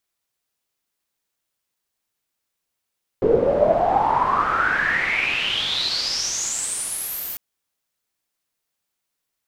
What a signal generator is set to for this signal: swept filtered noise white, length 4.15 s lowpass, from 420 Hz, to 15 kHz, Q 9.6, exponential, gain ramp -25.5 dB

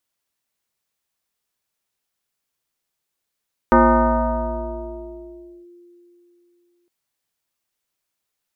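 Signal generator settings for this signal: FM tone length 3.16 s, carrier 349 Hz, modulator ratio 0.84, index 3.3, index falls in 1.95 s linear, decay 3.40 s, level -8 dB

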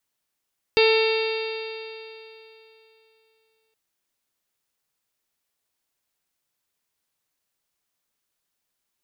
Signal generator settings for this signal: stretched partials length 2.97 s, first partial 442 Hz, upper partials -12/-17.5/-17.5/-11.5/-6/-18.5/-10.5/-16/-11.5 dB, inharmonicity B 0.0013, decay 3.09 s, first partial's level -15 dB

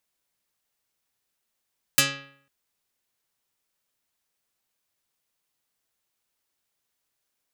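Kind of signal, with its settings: plucked string C#3, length 0.50 s, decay 0.62 s, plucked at 0.39, dark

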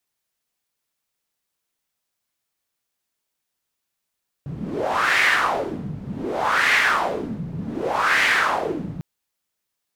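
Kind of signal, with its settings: wind-like swept noise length 4.55 s, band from 150 Hz, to 2 kHz, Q 3.6, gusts 3, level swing 14 dB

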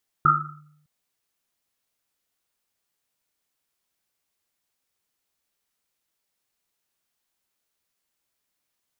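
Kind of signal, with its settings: Risset drum length 0.61 s, pitch 150 Hz, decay 0.92 s, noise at 1.3 kHz, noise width 160 Hz, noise 75%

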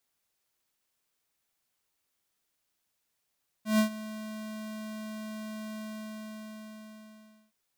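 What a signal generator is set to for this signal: ADSR square 216 Hz, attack 138 ms, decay 102 ms, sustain -17.5 dB, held 2.13 s, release 1740 ms -22 dBFS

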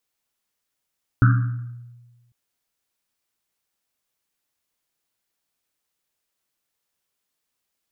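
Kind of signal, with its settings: Risset drum, pitch 120 Hz, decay 1.36 s, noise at 1.4 kHz, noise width 410 Hz, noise 15%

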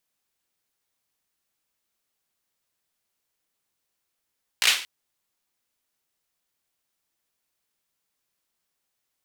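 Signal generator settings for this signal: hand clap length 0.23 s, apart 17 ms, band 2.8 kHz, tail 0.41 s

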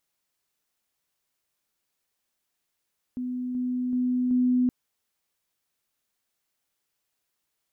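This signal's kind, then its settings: level ladder 250 Hz -28 dBFS, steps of 3 dB, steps 4, 0.38 s 0.00 s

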